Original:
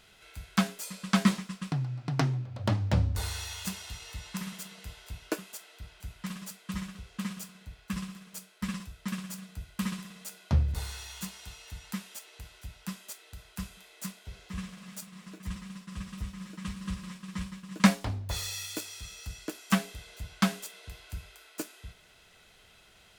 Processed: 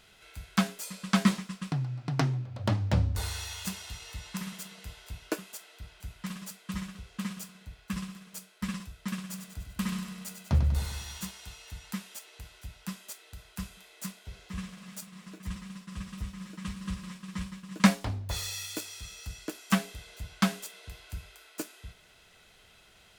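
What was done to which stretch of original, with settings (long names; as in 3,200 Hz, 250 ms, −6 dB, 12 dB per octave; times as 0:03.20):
0:09.23–0:11.31: repeating echo 97 ms, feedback 57%, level −8 dB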